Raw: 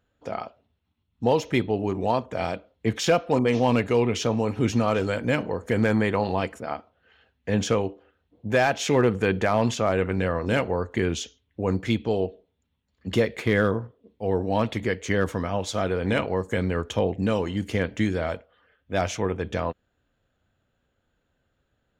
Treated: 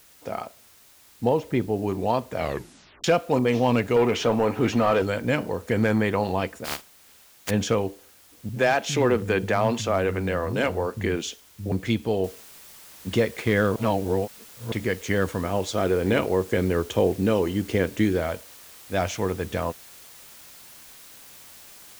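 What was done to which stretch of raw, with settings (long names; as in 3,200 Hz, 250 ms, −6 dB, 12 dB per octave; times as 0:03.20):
0:01.29–0:01.83: low-pass filter 1,100 Hz 6 dB per octave
0:02.38: tape stop 0.66 s
0:03.96–0:05.02: mid-hump overdrive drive 17 dB, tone 1,400 Hz, clips at −10.5 dBFS
0:06.64–0:07.49: compressing power law on the bin magnitudes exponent 0.16
0:08.49–0:11.72: multiband delay without the direct sound lows, highs 70 ms, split 180 Hz
0:12.24: noise floor change −54 dB −47 dB
0:13.76–0:14.72: reverse
0:15.44–0:18.21: parametric band 370 Hz +6.5 dB 0.75 octaves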